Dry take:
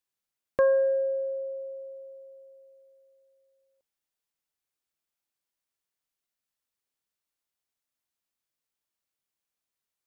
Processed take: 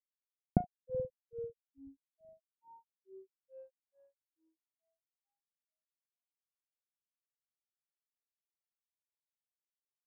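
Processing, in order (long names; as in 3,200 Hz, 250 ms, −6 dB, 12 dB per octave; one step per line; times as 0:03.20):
mu-law and A-law mismatch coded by A
downward compressor 2.5 to 1, threshold −31 dBFS, peak gain reduction 8 dB
low-pass filter sweep 140 Hz → 1,400 Hz, 0:02.16–0:04.26
spring reverb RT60 2.6 s, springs 48 ms, DRR 8.5 dB
granular cloud 236 ms, grains 2.3 per second, spray 24 ms, pitch spread up and down by 12 semitones
level +17.5 dB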